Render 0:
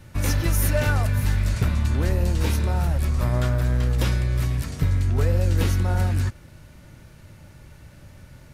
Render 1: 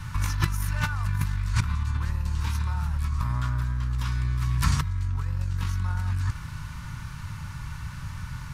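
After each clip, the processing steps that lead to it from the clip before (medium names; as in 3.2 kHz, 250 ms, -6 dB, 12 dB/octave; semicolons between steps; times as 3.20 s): FFT filter 150 Hz 0 dB, 410 Hz -20 dB, 680 Hz -17 dB, 1 kHz +7 dB, 2 kHz -2 dB, 5.9 kHz -1 dB, 14 kHz -7 dB; compressor with a negative ratio -29 dBFS, ratio -1; trim +3 dB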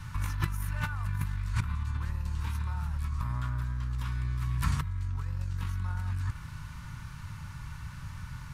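dynamic bell 5.5 kHz, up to -7 dB, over -52 dBFS, Q 1.2; trim -5.5 dB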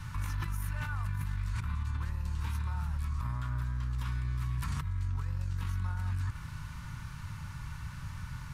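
peak limiter -26 dBFS, peak gain reduction 11 dB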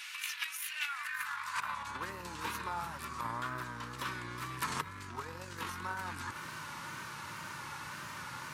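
high-pass sweep 2.6 kHz -> 390 Hz, 0.84–2.06 s; wow and flutter 74 cents; trim +7 dB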